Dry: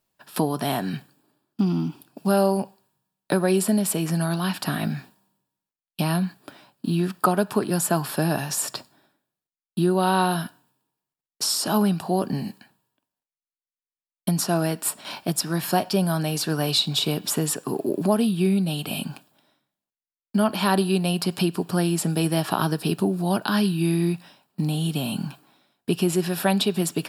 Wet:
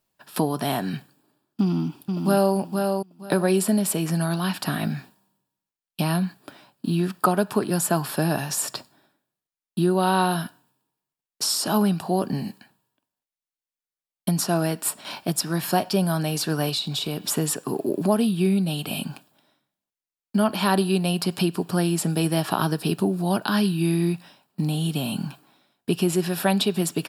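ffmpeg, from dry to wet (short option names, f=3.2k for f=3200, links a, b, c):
-filter_complex "[0:a]asplit=2[a][b];[b]afade=t=in:st=1.61:d=0.01,afade=t=out:st=2.55:d=0.01,aecho=0:1:470|940|1410:0.595662|0.119132|0.0238265[c];[a][c]amix=inputs=2:normalize=0,asettb=1/sr,asplit=3[d][e][f];[d]atrim=end=16.694[g];[e]atrim=start=16.69:end=17.26,asetpts=PTS-STARTPTS,afade=t=in:d=0.004:c=qsin,afade=t=out:st=0.566:d=0.004:c=qsin,acompressor=threshold=-25dB:ratio=2.5:attack=3.2:release=140:knee=1:detection=peak[h];[f]atrim=start=17.256[i];[g][h]acrossfade=d=0.004:c1=hsin:c2=qsin[j];[j][i]acrossfade=d=0.004:c1=qsin:c2=hsin"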